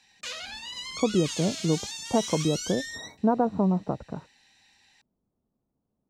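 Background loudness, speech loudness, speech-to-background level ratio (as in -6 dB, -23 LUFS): -34.5 LUFS, -27.5 LUFS, 7.0 dB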